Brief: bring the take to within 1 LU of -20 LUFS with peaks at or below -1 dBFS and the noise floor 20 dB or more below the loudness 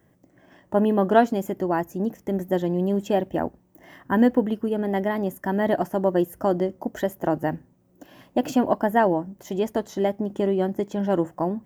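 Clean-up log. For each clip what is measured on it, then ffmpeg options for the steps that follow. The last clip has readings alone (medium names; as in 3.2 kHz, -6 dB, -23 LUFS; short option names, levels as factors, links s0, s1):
loudness -24.0 LUFS; peak level -3.5 dBFS; loudness target -20.0 LUFS
-> -af "volume=1.58,alimiter=limit=0.891:level=0:latency=1"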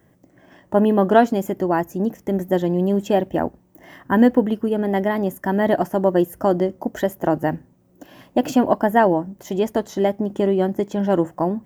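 loudness -20.5 LUFS; peak level -1.0 dBFS; noise floor -57 dBFS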